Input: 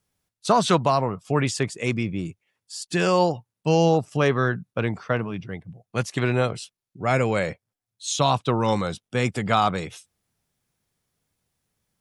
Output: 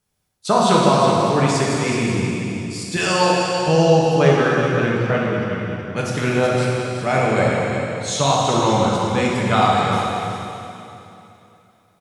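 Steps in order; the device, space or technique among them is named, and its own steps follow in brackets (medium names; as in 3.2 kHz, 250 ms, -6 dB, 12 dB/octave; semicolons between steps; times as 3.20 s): 2.97–3.68 s: tilt EQ +2.5 dB/octave; cave (delay 371 ms -9 dB; reverberation RT60 2.9 s, pre-delay 4 ms, DRR -4 dB)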